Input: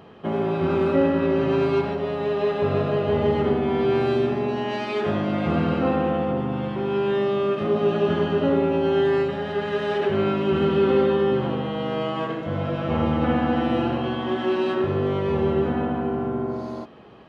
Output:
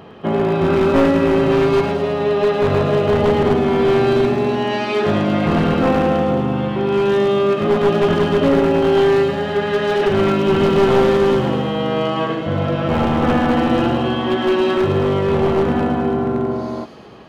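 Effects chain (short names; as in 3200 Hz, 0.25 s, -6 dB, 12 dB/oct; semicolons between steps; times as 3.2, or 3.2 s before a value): one-sided fold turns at -17.5 dBFS; thin delay 0.108 s, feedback 73%, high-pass 3400 Hz, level -6.5 dB; gain +7 dB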